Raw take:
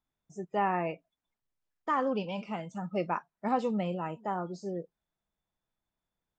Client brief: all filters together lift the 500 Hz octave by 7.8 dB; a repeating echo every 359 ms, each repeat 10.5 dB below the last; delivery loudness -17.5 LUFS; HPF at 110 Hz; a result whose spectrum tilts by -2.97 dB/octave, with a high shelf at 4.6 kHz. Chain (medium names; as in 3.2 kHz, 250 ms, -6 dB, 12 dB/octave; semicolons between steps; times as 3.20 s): high-pass 110 Hz; peaking EQ 500 Hz +9 dB; treble shelf 4.6 kHz +4.5 dB; feedback delay 359 ms, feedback 30%, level -10.5 dB; trim +11 dB